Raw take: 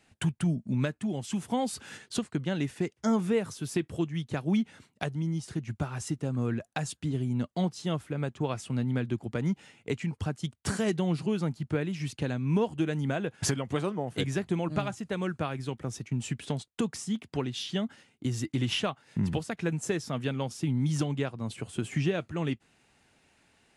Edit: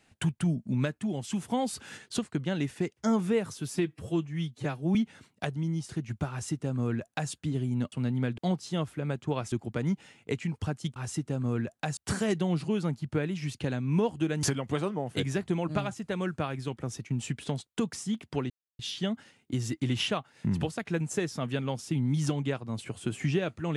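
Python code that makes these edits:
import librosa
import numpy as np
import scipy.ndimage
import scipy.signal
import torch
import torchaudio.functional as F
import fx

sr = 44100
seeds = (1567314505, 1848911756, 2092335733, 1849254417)

y = fx.edit(x, sr, fx.stretch_span(start_s=3.72, length_s=0.82, factor=1.5),
    fx.duplicate(start_s=5.89, length_s=1.01, to_s=10.55),
    fx.move(start_s=8.65, length_s=0.46, to_s=7.51),
    fx.cut(start_s=13.01, length_s=0.43),
    fx.insert_silence(at_s=17.51, length_s=0.29), tone=tone)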